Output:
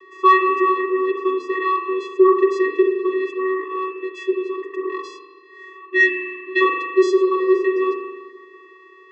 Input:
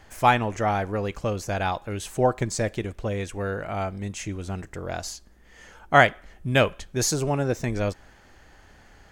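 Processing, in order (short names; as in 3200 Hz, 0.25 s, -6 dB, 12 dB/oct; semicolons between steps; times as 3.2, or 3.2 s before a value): vocoder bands 16, square 376 Hz; three-band isolator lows -15 dB, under 390 Hz, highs -16 dB, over 4400 Hz; on a send at -2 dB: reverb RT60 1.4 s, pre-delay 41 ms; on the sum: spectral repair 5.94–6.59, 380–1600 Hz before; in parallel at -3 dB: soft clip -21.5 dBFS, distortion -15 dB; on the sum: high shelf 5300 Hz -10.5 dB; gain +8.5 dB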